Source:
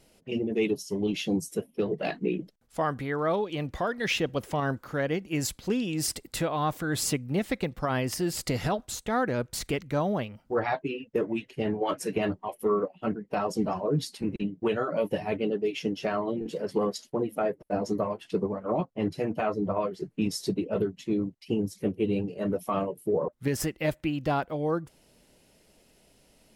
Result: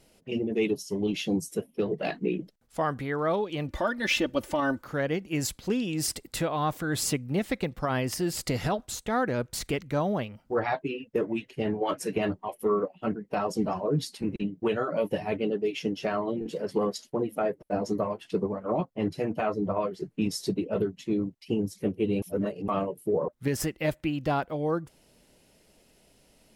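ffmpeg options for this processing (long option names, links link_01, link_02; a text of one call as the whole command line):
ffmpeg -i in.wav -filter_complex "[0:a]asettb=1/sr,asplit=3[link_01][link_02][link_03];[link_01]atrim=end=3.684[link_04];[link_02]atrim=start=3.68:end=4.82,asetpts=PTS-STARTPTS,afade=type=in:duration=0.004:curve=qsin,afade=type=out:start_time=1.136:duration=0.004:curve=qsin,aecho=1:1:3.4:0.77,atrim=end_sample=50274[link_05];[link_03]atrim=start=4.816[link_06];[link_04][link_05]acrossfade=duration=0.004:curve1=hsin:curve2=qsin[link_07];[link_07][link_06]acrossfade=duration=0.004:curve1=qsin:curve2=hsin,asplit=3[link_08][link_09][link_10];[link_08]atrim=end=22.222[link_11];[link_09]atrim=start=22.218:end=22.682,asetpts=PTS-STARTPTS,areverse[link_12];[link_10]atrim=start=22.678[link_13];[link_11][link_12]acrossfade=duration=0.004:curve1=hsin:curve2=hsin[link_14];[link_14][link_13]acrossfade=duration=0.004:curve1=hsin:curve2=hsin" out.wav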